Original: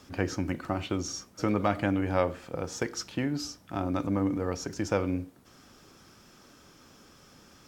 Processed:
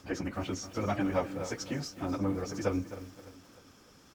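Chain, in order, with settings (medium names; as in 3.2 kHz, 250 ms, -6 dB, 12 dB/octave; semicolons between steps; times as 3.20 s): plain phase-vocoder stretch 0.54×; feedback delay 302 ms, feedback 53%, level -18.5 dB; bit-crushed delay 260 ms, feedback 35%, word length 8-bit, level -13 dB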